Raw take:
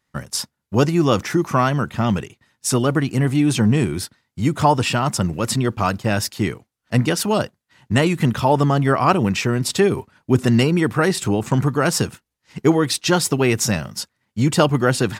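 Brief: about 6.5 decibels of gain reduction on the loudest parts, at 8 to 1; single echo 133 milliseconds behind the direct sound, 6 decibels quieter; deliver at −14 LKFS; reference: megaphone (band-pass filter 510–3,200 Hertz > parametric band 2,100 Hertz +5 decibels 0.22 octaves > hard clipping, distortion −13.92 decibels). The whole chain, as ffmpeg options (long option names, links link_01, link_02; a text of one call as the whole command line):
ffmpeg -i in.wav -af "acompressor=threshold=-17dB:ratio=8,highpass=510,lowpass=3200,equalizer=frequency=2100:width_type=o:width=0.22:gain=5,aecho=1:1:133:0.501,asoftclip=type=hard:threshold=-19.5dB,volume=15dB" out.wav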